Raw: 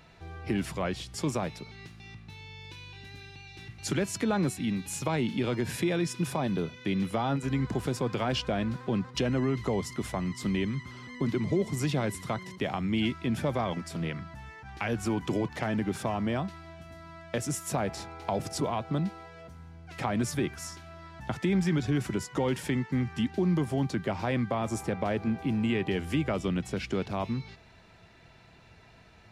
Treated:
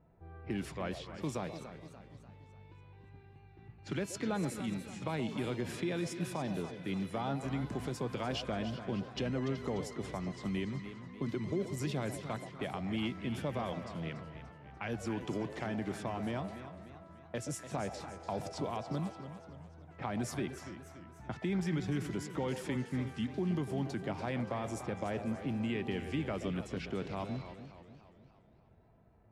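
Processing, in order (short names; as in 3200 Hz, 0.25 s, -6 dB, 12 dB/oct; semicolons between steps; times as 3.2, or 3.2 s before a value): delay with a stepping band-pass 0.126 s, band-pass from 570 Hz, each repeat 1.4 oct, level -7.5 dB; low-pass opened by the level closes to 650 Hz, open at -26.5 dBFS; warbling echo 0.291 s, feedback 49%, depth 140 cents, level -11.5 dB; gain -7.5 dB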